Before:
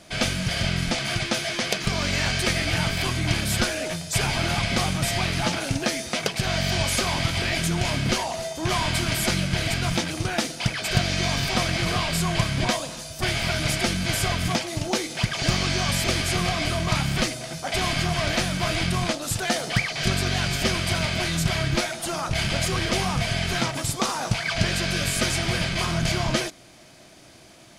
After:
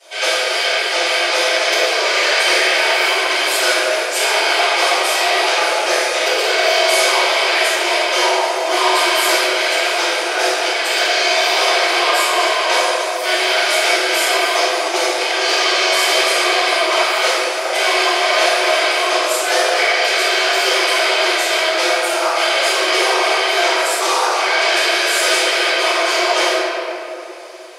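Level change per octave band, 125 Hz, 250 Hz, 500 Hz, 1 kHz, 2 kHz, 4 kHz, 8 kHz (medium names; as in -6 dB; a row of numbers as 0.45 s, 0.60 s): under -40 dB, -1.0 dB, +13.0 dB, +13.0 dB, +12.0 dB, +10.5 dB, +7.5 dB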